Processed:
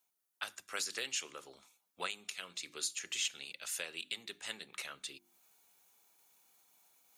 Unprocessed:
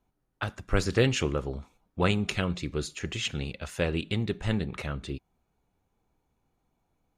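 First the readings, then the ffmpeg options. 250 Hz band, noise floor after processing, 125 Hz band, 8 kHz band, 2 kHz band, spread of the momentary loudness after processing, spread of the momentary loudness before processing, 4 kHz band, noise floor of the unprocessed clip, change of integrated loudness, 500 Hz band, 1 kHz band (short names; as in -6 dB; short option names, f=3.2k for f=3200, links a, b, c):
-28.0 dB, -83 dBFS, -39.0 dB, +2.0 dB, -8.0 dB, 11 LU, 12 LU, -4.0 dB, -77 dBFS, -10.0 dB, -20.5 dB, -11.5 dB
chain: -filter_complex "[0:a]acrossover=split=160|920[a][b][c];[a]acompressor=threshold=-42dB:ratio=6[d];[d][b][c]amix=inputs=3:normalize=0,bandreject=f=50:t=h:w=6,bandreject=f=100:t=h:w=6,bandreject=f=150:t=h:w=6,bandreject=f=200:t=h:w=6,bandreject=f=250:t=h:w=6,bandreject=f=300:t=h:w=6,bandreject=f=350:t=h:w=6,areverse,acompressor=mode=upward:threshold=-48dB:ratio=2.5,areverse,aderivative,alimiter=level_in=6dB:limit=-24dB:level=0:latency=1:release=464,volume=-6dB,equalizer=f=70:w=0.93:g=-4.5,volume=6.5dB"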